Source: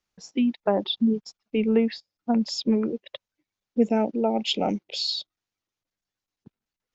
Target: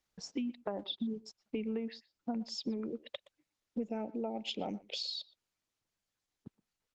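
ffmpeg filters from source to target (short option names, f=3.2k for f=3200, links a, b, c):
-filter_complex "[0:a]acompressor=threshold=-36dB:ratio=5,asplit=2[a][b];[b]adelay=120,highpass=300,lowpass=3.4k,asoftclip=type=hard:threshold=-29.5dB,volume=-18dB[c];[a][c]amix=inputs=2:normalize=0" -ar 48000 -c:a libopus -b:a 20k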